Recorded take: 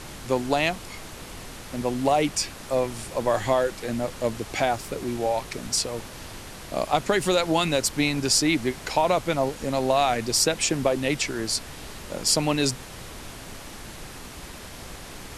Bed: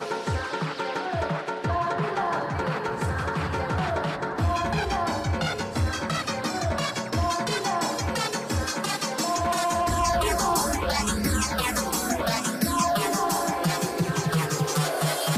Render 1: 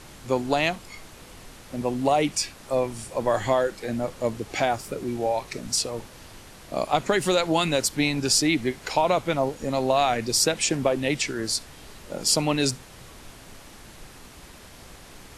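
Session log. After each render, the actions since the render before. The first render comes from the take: noise print and reduce 6 dB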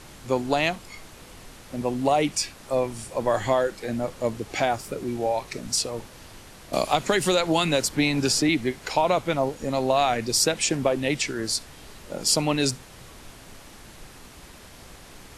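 6.73–8.49 three-band squash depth 70%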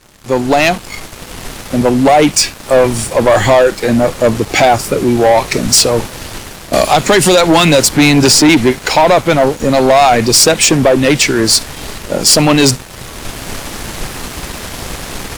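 AGC gain up to 11.5 dB; sample leveller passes 3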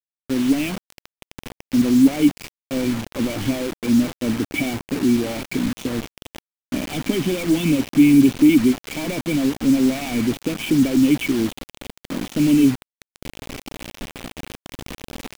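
vocal tract filter i; bit-crush 5-bit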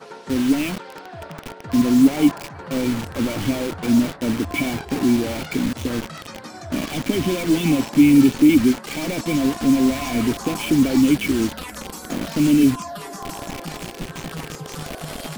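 add bed -9 dB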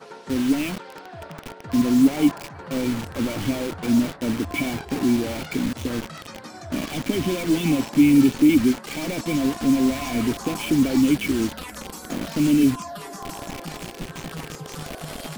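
gain -2.5 dB

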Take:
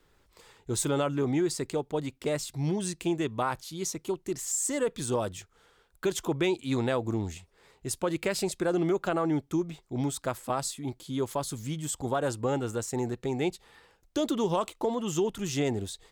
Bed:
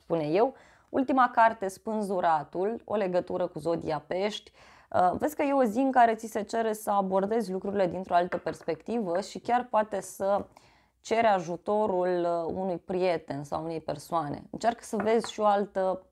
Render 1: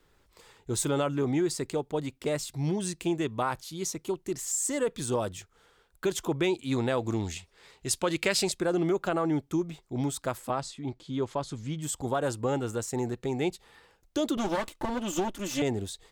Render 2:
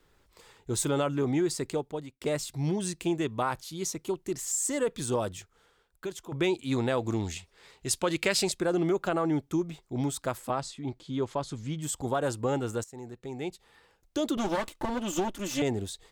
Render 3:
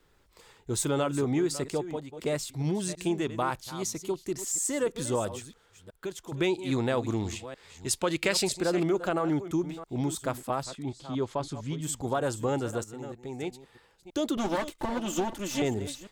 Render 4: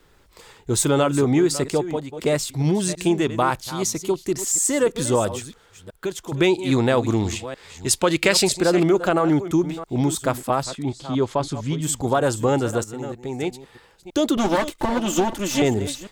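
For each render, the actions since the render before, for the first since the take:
6.97–8.52 bell 3900 Hz +8 dB 2.7 oct; 10.5–11.82 air absorption 100 m; 14.37–15.62 minimum comb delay 3.4 ms
1.75–2.21 fade out, to -23.5 dB; 5.31–6.32 fade out, to -13 dB; 12.84–14.4 fade in, from -16 dB
reverse delay 0.328 s, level -13 dB
gain +9 dB

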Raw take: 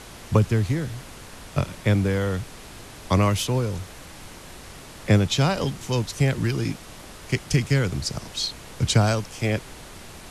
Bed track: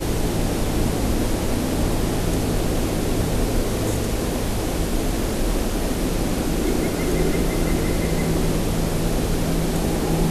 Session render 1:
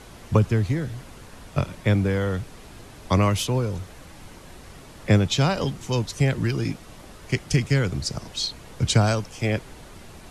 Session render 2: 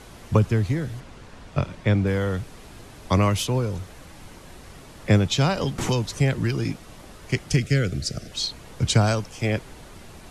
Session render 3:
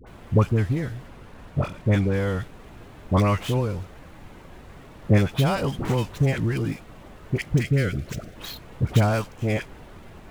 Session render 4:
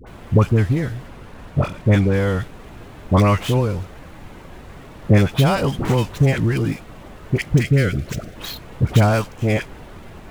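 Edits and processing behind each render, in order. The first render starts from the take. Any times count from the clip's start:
denoiser 6 dB, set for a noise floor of -43 dBFS
1–2.07 air absorption 59 m; 5.78–6.19 three-band squash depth 100%; 7.57–8.32 Butterworth band-stop 950 Hz, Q 1.6
median filter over 9 samples; dispersion highs, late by 69 ms, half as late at 920 Hz
gain +5.5 dB; limiter -3 dBFS, peak gain reduction 2 dB

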